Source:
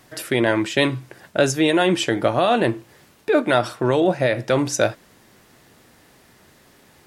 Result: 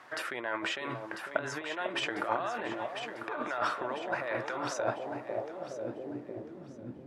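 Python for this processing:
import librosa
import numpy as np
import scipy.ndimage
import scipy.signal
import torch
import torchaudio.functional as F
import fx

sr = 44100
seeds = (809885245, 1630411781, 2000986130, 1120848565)

y = fx.over_compress(x, sr, threshold_db=-26.0, ratio=-1.0)
y = fx.echo_alternate(y, sr, ms=498, hz=900.0, feedback_pct=72, wet_db=-5.0)
y = fx.filter_sweep_bandpass(y, sr, from_hz=1200.0, to_hz=210.0, start_s=4.52, end_s=7.03, q=1.5)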